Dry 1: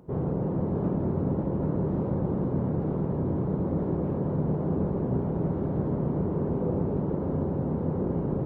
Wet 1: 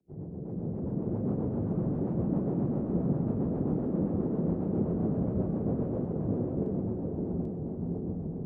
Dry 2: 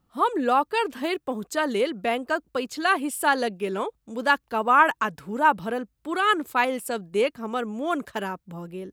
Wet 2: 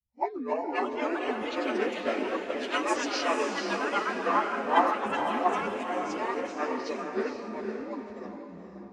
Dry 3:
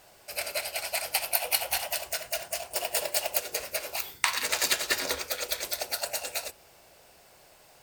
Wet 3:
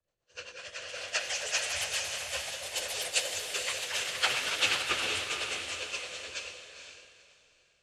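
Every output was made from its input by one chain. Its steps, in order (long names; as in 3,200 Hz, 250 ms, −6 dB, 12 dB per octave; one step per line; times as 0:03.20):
partials spread apart or drawn together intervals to 81%
low-shelf EQ 96 Hz +11 dB
delay with pitch and tempo change per echo 341 ms, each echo +3 semitones, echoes 3
rotating-speaker cabinet horn 7.5 Hz
dynamic equaliser 2,800 Hz, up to +7 dB, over −50 dBFS, Q 1.8
feedback delay with all-pass diffusion 485 ms, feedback 46%, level −3 dB
multiband upward and downward expander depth 70%
level −5.5 dB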